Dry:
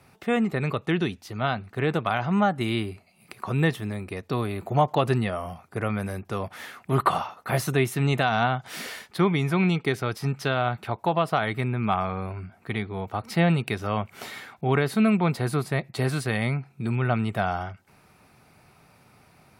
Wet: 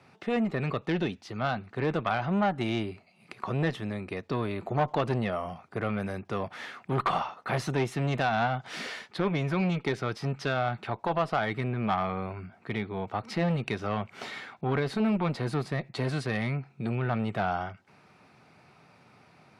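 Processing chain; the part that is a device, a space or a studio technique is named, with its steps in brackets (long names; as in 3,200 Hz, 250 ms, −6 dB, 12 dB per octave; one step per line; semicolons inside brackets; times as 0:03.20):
valve radio (band-pass filter 120–5,400 Hz; tube saturation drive 16 dB, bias 0.2; saturating transformer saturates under 430 Hz)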